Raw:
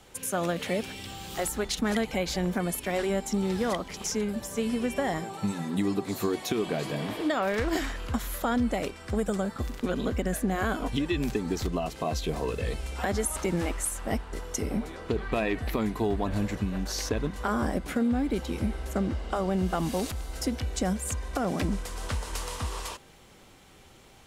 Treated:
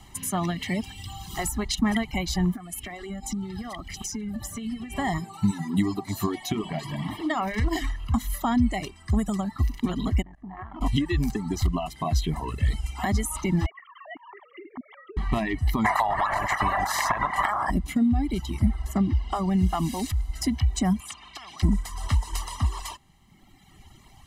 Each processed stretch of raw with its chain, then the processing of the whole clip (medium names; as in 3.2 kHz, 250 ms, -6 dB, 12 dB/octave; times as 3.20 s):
2.54–4.96 s: band-stop 980 Hz, Q 5.5 + compression 12:1, threshold -31 dBFS
6.38–8.30 s: treble shelf 4.9 kHz -3 dB + hum notches 50/100/150/200/250/300/350/400/450/500 Hz
10.22–10.81 s: low-pass 1.9 kHz + level held to a coarse grid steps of 18 dB + transformer saturation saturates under 490 Hz
13.66–15.17 s: formants replaced by sine waves + compression 2.5:1, threshold -45 dBFS
15.84–17.69 s: spectral peaks clipped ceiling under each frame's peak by 22 dB + high-order bell 1 kHz +16 dB 2.3 oct + compression 20:1, threshold -19 dBFS
21.00–21.63 s: vowel filter a + spectrum-flattening compressor 10:1
whole clip: reverb removal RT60 1.7 s; bass shelf 230 Hz +5.5 dB; comb 1 ms, depth 92%